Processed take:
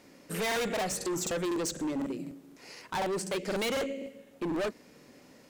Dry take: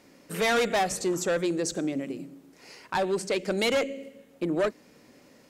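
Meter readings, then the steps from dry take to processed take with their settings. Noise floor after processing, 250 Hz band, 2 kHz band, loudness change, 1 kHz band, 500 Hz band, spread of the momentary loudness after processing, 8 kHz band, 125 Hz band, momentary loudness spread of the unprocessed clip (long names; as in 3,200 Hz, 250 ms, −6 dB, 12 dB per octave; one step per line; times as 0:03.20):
−57 dBFS, −3.5 dB, −5.5 dB, −5.0 dB, −5.5 dB, −5.5 dB, 12 LU, −1.5 dB, −3.0 dB, 14 LU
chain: gain into a clipping stage and back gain 29 dB
regular buffer underruns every 0.25 s, samples 2,048, repeat, from 0:00.47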